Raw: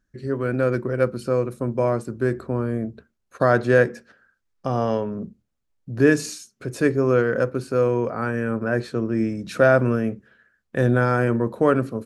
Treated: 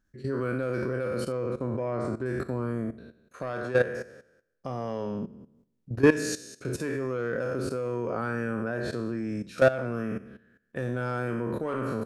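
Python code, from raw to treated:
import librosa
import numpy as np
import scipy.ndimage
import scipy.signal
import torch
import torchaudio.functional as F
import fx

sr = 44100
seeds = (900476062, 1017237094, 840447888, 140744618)

y = fx.spec_trails(x, sr, decay_s=0.74)
y = 10.0 ** (-8.0 / 20.0) * np.tanh(y / 10.0 ** (-8.0 / 20.0))
y = fx.level_steps(y, sr, step_db=15)
y = fx.lowpass(y, sr, hz=4300.0, slope=12, at=(1.32, 2.26))
y = fx.rider(y, sr, range_db=4, speed_s=2.0)
y = y * 10.0 ** (-2.0 / 20.0)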